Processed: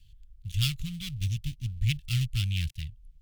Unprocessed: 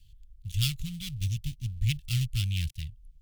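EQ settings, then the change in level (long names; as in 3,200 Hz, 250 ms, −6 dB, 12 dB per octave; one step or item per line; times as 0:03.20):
low-shelf EQ 370 Hz −5 dB
high-shelf EQ 3,400 Hz −8 dB
+5.0 dB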